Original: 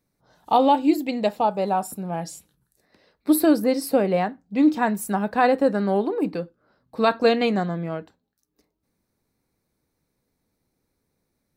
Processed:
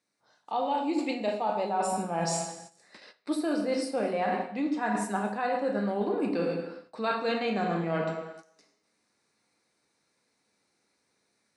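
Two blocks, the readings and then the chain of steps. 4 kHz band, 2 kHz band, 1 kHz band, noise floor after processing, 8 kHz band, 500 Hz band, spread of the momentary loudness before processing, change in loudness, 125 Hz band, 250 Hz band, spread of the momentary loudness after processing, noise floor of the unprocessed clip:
-6.0 dB, -5.0 dB, -7.0 dB, -76 dBFS, -3.0 dB, -7.5 dB, 13 LU, -8.0 dB, -5.5 dB, -9.0 dB, 6 LU, -77 dBFS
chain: bass shelf 370 Hz +8.5 dB; resampled via 22.05 kHz; frequency weighting A; gain riding within 3 dB 0.5 s; band-stop 3.3 kHz, Q 19; plate-style reverb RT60 0.91 s, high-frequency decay 0.9×, DRR 2 dB; gate -53 dBFS, range -12 dB; reverse; compression 10:1, threshold -31 dBFS, peak gain reduction 19 dB; reverse; tape noise reduction on one side only encoder only; trim +5 dB

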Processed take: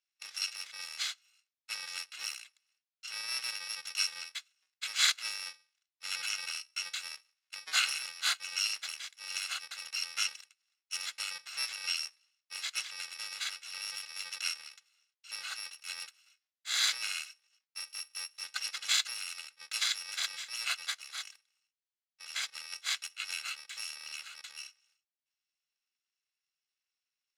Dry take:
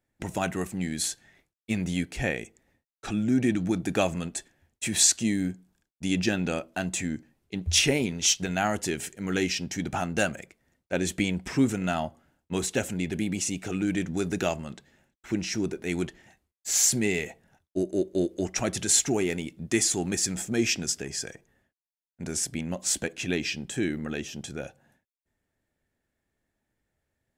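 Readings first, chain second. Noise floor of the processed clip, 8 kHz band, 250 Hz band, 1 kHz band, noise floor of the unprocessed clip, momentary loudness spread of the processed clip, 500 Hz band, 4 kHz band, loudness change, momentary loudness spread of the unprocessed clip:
under -85 dBFS, -10.5 dB, under -40 dB, -10.5 dB, under -85 dBFS, 15 LU, under -30 dB, -0.5 dB, -7.5 dB, 14 LU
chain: bit-reversed sample order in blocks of 128 samples; Butterworth band-pass 3.1 kHz, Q 0.73

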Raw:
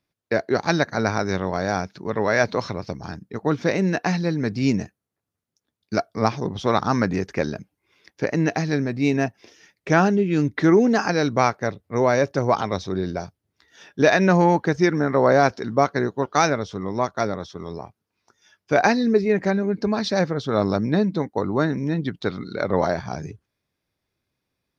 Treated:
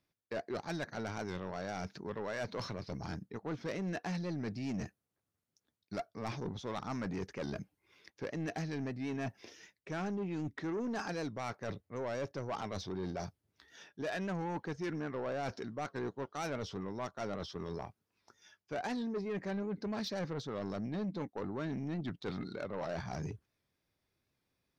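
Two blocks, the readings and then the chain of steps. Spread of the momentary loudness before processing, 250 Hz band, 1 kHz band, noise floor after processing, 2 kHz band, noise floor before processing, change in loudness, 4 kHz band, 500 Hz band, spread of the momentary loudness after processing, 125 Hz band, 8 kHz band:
12 LU, -17.0 dB, -19.0 dB, under -85 dBFS, -19.0 dB, -82 dBFS, -18.0 dB, -14.5 dB, -18.5 dB, 6 LU, -16.0 dB, no reading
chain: reverse; compression 5:1, threshold -29 dBFS, peak gain reduction 16 dB; reverse; saturation -28.5 dBFS, distortion -11 dB; warped record 78 rpm, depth 100 cents; trim -3.5 dB

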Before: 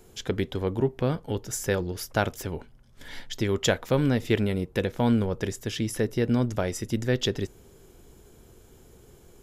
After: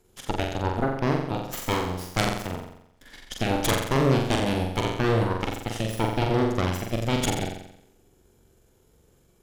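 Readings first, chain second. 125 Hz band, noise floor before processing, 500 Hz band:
+1.5 dB, -54 dBFS, 0.0 dB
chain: Chebyshev shaper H 3 -6 dB, 5 -12 dB, 7 -22 dB, 8 -17 dB, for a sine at -7.5 dBFS; flutter echo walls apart 7.6 m, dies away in 0.76 s; trim +3.5 dB

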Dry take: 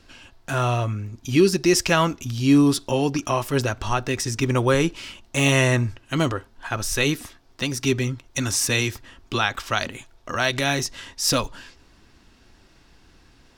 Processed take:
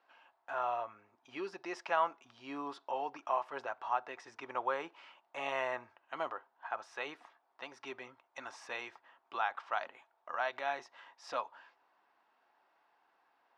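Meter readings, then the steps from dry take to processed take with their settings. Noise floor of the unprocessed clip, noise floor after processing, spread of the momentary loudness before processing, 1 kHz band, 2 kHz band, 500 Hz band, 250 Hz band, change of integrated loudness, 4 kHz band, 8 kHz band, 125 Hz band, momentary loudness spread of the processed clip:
-56 dBFS, -76 dBFS, 12 LU, -8.0 dB, -15.5 dB, -16.5 dB, -28.5 dB, -17.0 dB, -24.5 dB, -34.5 dB, under -40 dB, 14 LU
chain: ladder band-pass 970 Hz, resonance 45%

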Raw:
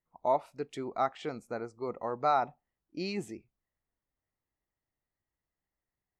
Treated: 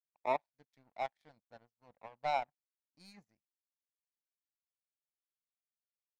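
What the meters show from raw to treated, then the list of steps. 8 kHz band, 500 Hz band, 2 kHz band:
under -10 dB, -8.5 dB, -3.0 dB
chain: static phaser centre 1.9 kHz, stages 8; power-law waveshaper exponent 2

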